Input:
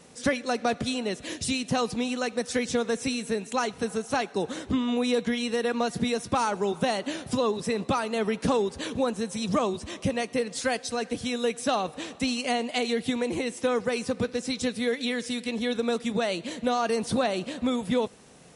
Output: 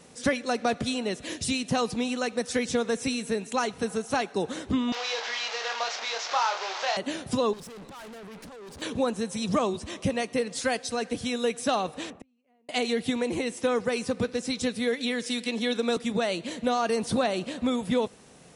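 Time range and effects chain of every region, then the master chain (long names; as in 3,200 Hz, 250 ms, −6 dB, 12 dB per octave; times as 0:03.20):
0:04.92–0:06.97: linear delta modulator 32 kbit/s, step −25 dBFS + high-pass filter 630 Hz 24 dB per octave + double-tracking delay 26 ms −6 dB
0:07.53–0:08.82: compressor whose output falls as the input rises −28 dBFS, ratio −0.5 + tube saturation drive 42 dB, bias 0.7
0:12.10–0:12.69: drawn EQ curve 240 Hz 0 dB, 2,300 Hz −7 dB, 4,300 Hz −20 dB + gate with flip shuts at −29 dBFS, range −41 dB + multiband upward and downward compressor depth 40%
0:15.26–0:15.97: Butterworth high-pass 180 Hz + parametric band 4,400 Hz +3.5 dB 2.3 octaves
whole clip: no processing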